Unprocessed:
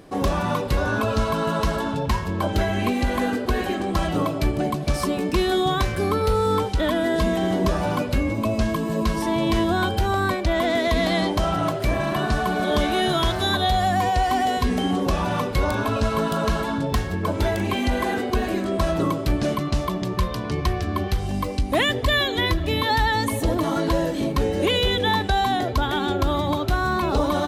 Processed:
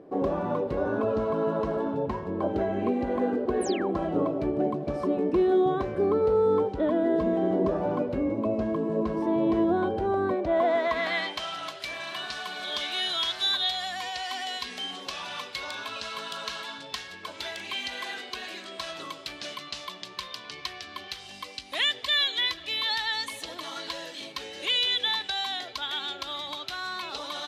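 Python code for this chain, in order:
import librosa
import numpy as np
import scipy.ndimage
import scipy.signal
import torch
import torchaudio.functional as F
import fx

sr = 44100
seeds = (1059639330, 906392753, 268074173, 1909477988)

y = fx.filter_sweep_bandpass(x, sr, from_hz=420.0, to_hz=3700.0, start_s=10.37, end_s=11.51, q=1.3)
y = fx.spec_paint(y, sr, seeds[0], shape='fall', start_s=3.61, length_s=0.3, low_hz=630.0, high_hz=11000.0, level_db=-40.0)
y = y * 10.0 ** (1.0 / 20.0)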